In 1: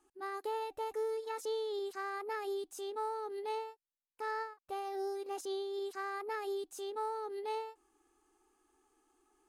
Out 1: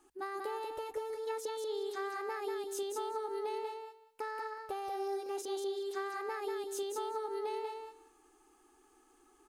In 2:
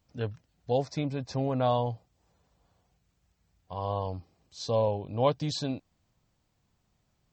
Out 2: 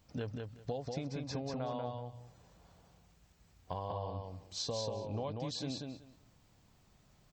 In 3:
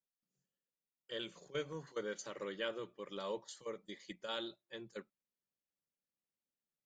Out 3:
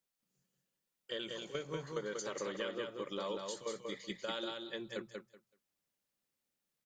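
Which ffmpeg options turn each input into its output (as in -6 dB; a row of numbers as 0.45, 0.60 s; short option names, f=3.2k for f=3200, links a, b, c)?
-filter_complex "[0:a]bandreject=f=60:t=h:w=6,bandreject=f=120:t=h:w=6,acompressor=threshold=-42dB:ratio=20,asplit=2[a][b];[b]aecho=0:1:189|378|567:0.631|0.107|0.0182[c];[a][c]amix=inputs=2:normalize=0,volume=6dB"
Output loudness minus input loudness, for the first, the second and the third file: +0.5, -9.5, +3.0 LU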